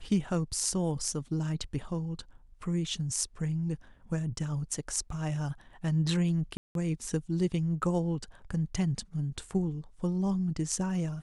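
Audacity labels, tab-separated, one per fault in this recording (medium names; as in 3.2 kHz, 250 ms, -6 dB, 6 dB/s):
6.570000	6.750000	dropout 182 ms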